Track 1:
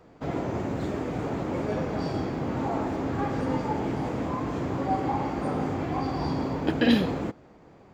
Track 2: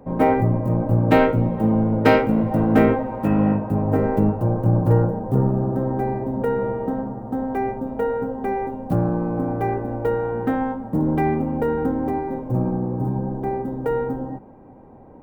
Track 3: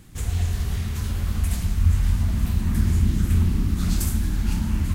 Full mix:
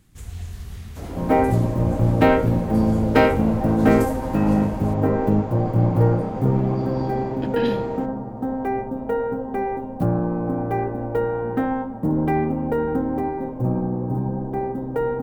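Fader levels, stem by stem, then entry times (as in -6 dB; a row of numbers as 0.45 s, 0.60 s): -6.0 dB, -0.5 dB, -9.5 dB; 0.75 s, 1.10 s, 0.00 s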